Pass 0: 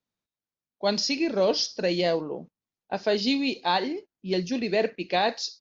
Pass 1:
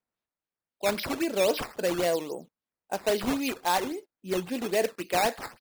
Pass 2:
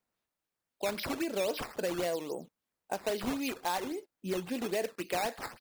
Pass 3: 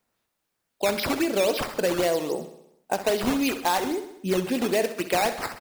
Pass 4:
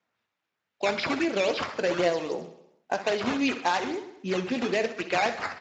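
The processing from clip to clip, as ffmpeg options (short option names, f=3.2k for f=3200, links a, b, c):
-filter_complex "[0:a]bass=f=250:g=-7,treble=f=4k:g=-3,acrossover=split=5400[a][b];[b]acompressor=threshold=-51dB:ratio=4:attack=1:release=60[c];[a][c]amix=inputs=2:normalize=0,acrusher=samples=10:mix=1:aa=0.000001:lfo=1:lforange=10:lforate=3.7,volume=-1dB"
-af "acompressor=threshold=-39dB:ratio=2.5,volume=4dB"
-af "aecho=1:1:65|130|195|260|325|390|455:0.224|0.134|0.0806|0.0484|0.029|0.0174|0.0104,volume=9dB"
-filter_complex "[0:a]flanger=delay=5.4:depth=7.4:regen=71:speed=0.98:shape=triangular,acrossover=split=2600[a][b];[a]crystalizer=i=7.5:c=0[c];[c][b]amix=inputs=2:normalize=0" -ar 16000 -c:a libspeex -b:a 34k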